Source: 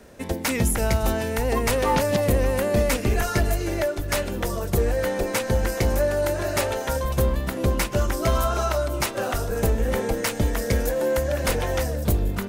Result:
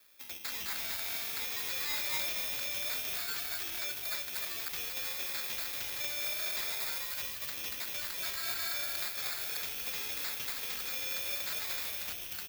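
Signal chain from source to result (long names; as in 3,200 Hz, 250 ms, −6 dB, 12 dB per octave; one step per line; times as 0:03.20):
sub-octave generator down 2 octaves, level +1 dB
automatic gain control gain up to 4 dB
on a send at −11 dB: convolution reverb RT60 0.35 s, pre-delay 3 ms
on the sum: decimation without filtering 15×
graphic EQ with 10 bands 125 Hz −4 dB, 250 Hz −6 dB, 500 Hz −7 dB, 1,000 Hz −5 dB, 8,000 Hz −10 dB
in parallel at +3 dB: brickwall limiter −14 dBFS, peak gain reduction 8.5 dB
on the sum: first difference
echo with shifted repeats 235 ms, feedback 34%, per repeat +47 Hz, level −5 dB
regular buffer underruns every 0.12 s, samples 512, repeat, from 0:00.58
slew-rate limiting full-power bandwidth 910 Hz
level −7.5 dB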